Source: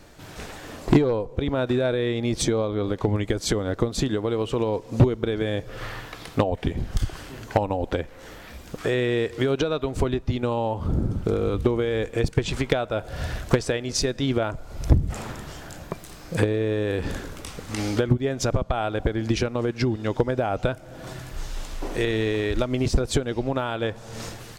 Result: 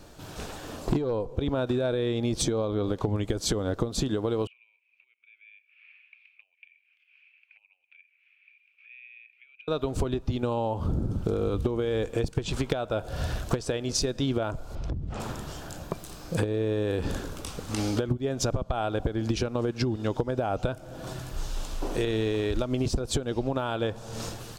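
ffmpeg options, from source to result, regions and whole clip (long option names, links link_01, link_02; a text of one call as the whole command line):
ffmpeg -i in.wav -filter_complex "[0:a]asettb=1/sr,asplit=3[link_01][link_02][link_03];[link_01]atrim=end=4.474[link_04];[link_02]atrim=start=4.47:end=9.68,asetpts=PTS-STARTPTS,afade=type=in:duration=0.004:curve=qsin,afade=type=out:start_time=5.206:duration=0.004:curve=qsin,acompressor=threshold=-29dB:ratio=2:attack=3.2:release=140:knee=1:detection=peak,asuperpass=centerf=2400:order=4:qfactor=7[link_05];[link_03]atrim=start=9.676[link_06];[link_04][link_05]acrossfade=duration=0.004:curve1=hsin:curve2=qsin[link_07];[link_07][link_06]acrossfade=duration=0.004:curve1=qsin:curve2=hsin,asettb=1/sr,asplit=3[link_08][link_09][link_10];[link_08]atrim=end=14.754[link_11];[link_09]atrim=start=14.75:end=15.2,asetpts=PTS-STARTPTS,afade=type=in:duration=0.004:curve=qsin,afade=type=out:start_time=0.446:duration=0.004:curve=qsin,lowpass=3800,acompressor=threshold=-28dB:ratio=12:attack=3.2:release=140:knee=1:detection=peak[link_12];[link_10]atrim=start=15.196[link_13];[link_11][link_12]acrossfade=duration=0.004:curve1=hsin:curve2=qsin[link_14];[link_14][link_13]acrossfade=duration=0.004:curve1=qsin:curve2=hsin,equalizer=frequency=2000:width_type=o:width=0.5:gain=-8,acompressor=threshold=-23dB:ratio=6" out.wav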